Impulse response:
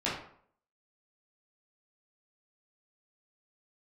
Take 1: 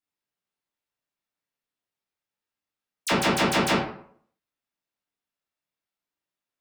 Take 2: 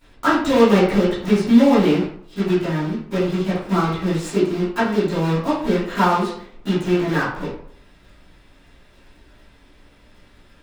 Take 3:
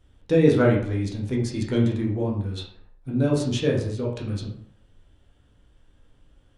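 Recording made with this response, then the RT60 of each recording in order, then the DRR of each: 1; 0.60 s, 0.60 s, 0.60 s; -9.0 dB, -17.5 dB, -3.0 dB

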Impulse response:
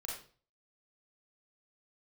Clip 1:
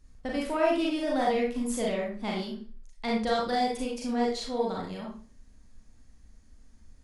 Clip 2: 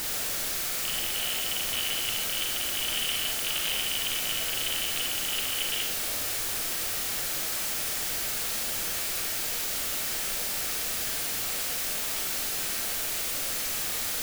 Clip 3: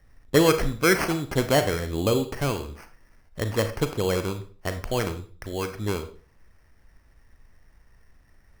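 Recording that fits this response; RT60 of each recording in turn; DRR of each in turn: 1; 0.40 s, 0.40 s, 0.40 s; -3.5 dB, 1.0 dB, 8.0 dB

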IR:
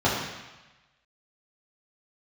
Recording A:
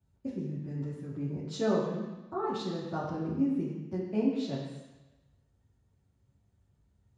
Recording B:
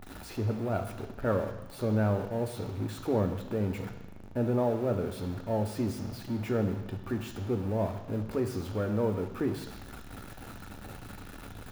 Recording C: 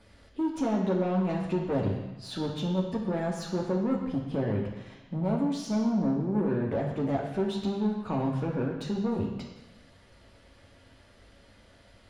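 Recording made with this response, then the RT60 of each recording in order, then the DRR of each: A; 1.1 s, 1.1 s, 1.1 s; -8.0 dB, 5.0 dB, -1.5 dB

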